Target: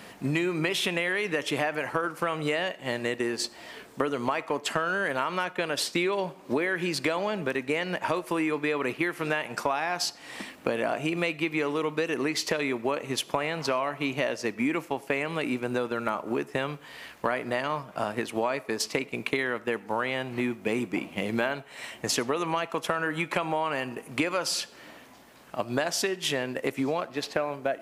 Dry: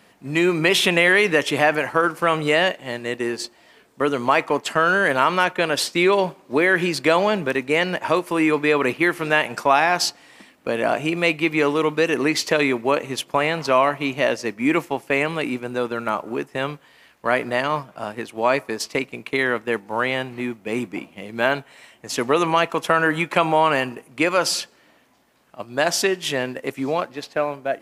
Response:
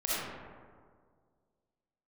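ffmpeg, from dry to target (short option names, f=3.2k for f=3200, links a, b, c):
-filter_complex "[0:a]acompressor=threshold=-33dB:ratio=8,asplit=2[a][b];[1:a]atrim=start_sample=2205,atrim=end_sample=6174[c];[b][c]afir=irnorm=-1:irlink=0,volume=-26.5dB[d];[a][d]amix=inputs=2:normalize=0,volume=7.5dB"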